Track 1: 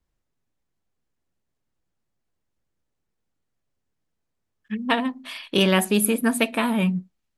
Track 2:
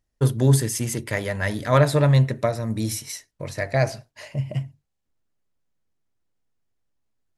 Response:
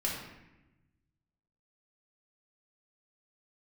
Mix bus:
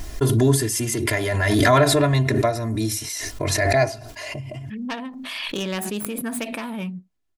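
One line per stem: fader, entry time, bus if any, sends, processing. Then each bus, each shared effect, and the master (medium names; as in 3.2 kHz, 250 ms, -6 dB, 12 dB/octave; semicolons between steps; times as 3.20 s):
-8.5 dB, 0.00 s, no send, self-modulated delay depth 0.12 ms
-0.5 dB, 0.00 s, no send, comb 2.9 ms, depth 99%; auto duck -8 dB, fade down 0.90 s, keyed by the first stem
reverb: none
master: swell ahead of each attack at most 23 dB/s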